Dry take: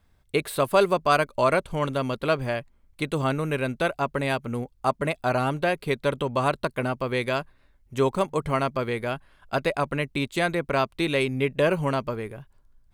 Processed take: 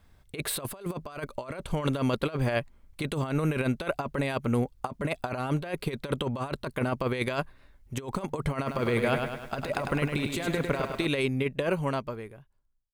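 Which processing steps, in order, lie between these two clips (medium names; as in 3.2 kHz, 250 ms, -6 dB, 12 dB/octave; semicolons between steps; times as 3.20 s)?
fade out at the end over 2.70 s; compressor with a negative ratio -28 dBFS, ratio -0.5; 8.56–11.06 s: bit-crushed delay 102 ms, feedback 55%, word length 9-bit, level -5 dB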